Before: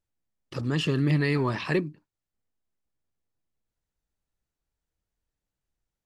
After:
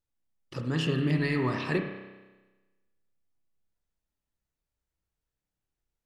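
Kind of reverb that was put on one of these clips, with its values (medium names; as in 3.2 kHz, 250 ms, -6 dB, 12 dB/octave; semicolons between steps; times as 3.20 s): spring tank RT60 1.2 s, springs 31 ms, chirp 70 ms, DRR 3.5 dB; trim -3.5 dB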